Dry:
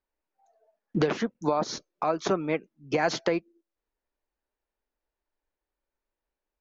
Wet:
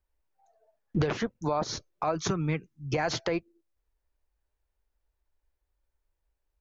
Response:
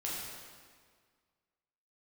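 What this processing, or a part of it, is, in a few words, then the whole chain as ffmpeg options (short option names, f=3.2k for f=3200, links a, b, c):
car stereo with a boomy subwoofer: -filter_complex "[0:a]lowshelf=f=140:t=q:w=1.5:g=12.5,alimiter=limit=-18dB:level=0:latency=1:release=58,asettb=1/sr,asplit=3[a][b][c];[a]atrim=end=2.154[d];[b]atrim=start=2.15:end=2.94,asetpts=PTS-STARTPTS,afade=t=in:d=0.004:c=qsin,afade=t=out:st=0.786:d=0.004:c=qsin,equalizer=f=160:t=o:w=0.67:g=8,equalizer=f=630:t=o:w=0.67:g=-11,equalizer=f=6.3k:t=o:w=0.67:g=6[e];[c]atrim=start=2.936[f];[d][e]acrossfade=d=0.004:c1=hsin:c2=qsin[g];[g][f]acrossfade=d=0.004:c1=qsin:c2=hsin"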